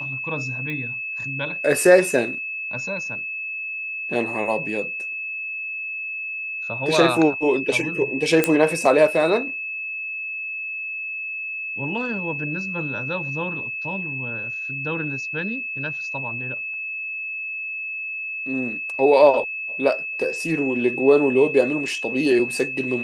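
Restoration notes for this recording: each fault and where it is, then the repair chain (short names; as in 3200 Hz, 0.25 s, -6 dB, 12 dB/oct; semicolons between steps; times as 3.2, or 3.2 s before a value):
tone 2600 Hz -27 dBFS
0.7 pop -20 dBFS
8.44 pop -3 dBFS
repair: de-click; notch 2600 Hz, Q 30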